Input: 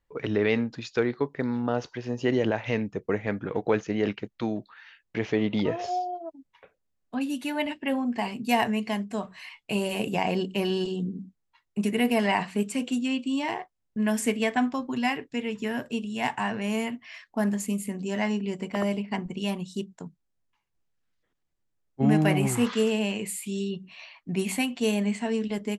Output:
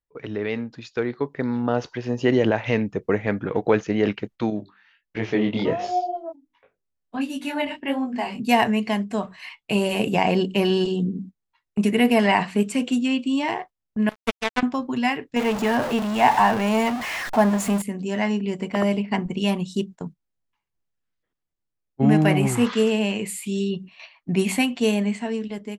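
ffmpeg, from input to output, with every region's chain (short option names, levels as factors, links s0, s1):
-filter_complex "[0:a]asettb=1/sr,asplit=3[s0][s1][s2];[s0]atrim=end=4.504[s3];[s1]atrim=start=4.5:end=8.4,asetpts=PTS-STARTPTS,afade=t=in:d=0.004:c=qsin,afade=t=out:st=3.896:d=0.004:c=qsin,bandreject=f=50:t=h:w=6,bandreject=f=100:t=h:w=6,bandreject=f=150:t=h:w=6,bandreject=f=200:t=h:w=6,bandreject=f=250:t=h:w=6,bandreject=f=300:t=h:w=6,bandreject=f=350:t=h:w=6,bandreject=f=400:t=h:w=6,flanger=delay=19:depth=7:speed=1.4[s4];[s2]atrim=start=8.396[s5];[s3][s4]acrossfade=d=0.004:c1=hsin:c2=qsin[s6];[s6][s5]acrossfade=d=0.004:c1=qsin:c2=hsin,asettb=1/sr,asplit=3[s7][s8][s9];[s7]atrim=end=14.094[s10];[s8]atrim=start=14.09:end=14.63,asetpts=PTS-STARTPTS,afade=t=in:d=0.004:c=qsin,afade=t=out:st=0.536:d=0.004:c=qsin,highshelf=f=4400:g=-6,acrusher=bits=2:mix=0:aa=0.5[s11];[s9]atrim=start=14.626[s12];[s10][s11]acrossfade=d=0.004:c1=hsin:c2=qsin[s13];[s13][s12]acrossfade=d=0.004:c1=qsin:c2=hsin,asettb=1/sr,asplit=3[s14][s15][s16];[s14]atrim=end=15.364[s17];[s15]atrim=start=15.36:end=17.82,asetpts=PTS-STARTPTS,afade=t=in:d=0.004:c=qsin,afade=t=out:st=2.456:d=0.004:c=qsin,aeval=exprs='val(0)+0.5*0.0355*sgn(val(0))':c=same,equalizer=f=840:w=1.1:g=9.5[s18];[s16]atrim=start=17.816[s19];[s17][s18]acrossfade=d=0.004:c1=hsin:c2=qsin[s20];[s20][s19]acrossfade=d=0.004:c1=qsin:c2=hsin,agate=range=0.316:threshold=0.00631:ratio=16:detection=peak,highshelf=f=6600:g=-5,dynaudnorm=f=360:g=7:m=3.76,volume=0.668"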